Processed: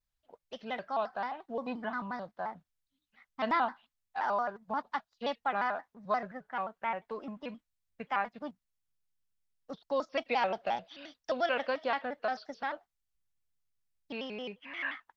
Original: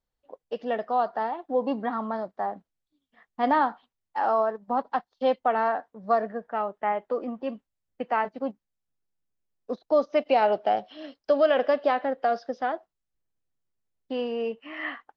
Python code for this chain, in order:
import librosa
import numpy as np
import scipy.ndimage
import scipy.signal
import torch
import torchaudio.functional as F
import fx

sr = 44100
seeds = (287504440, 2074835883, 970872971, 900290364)

y = fx.peak_eq(x, sr, hz=420.0, db=-13.5, octaves=2.2)
y = fx.vibrato_shape(y, sr, shape='square', rate_hz=5.7, depth_cents=160.0)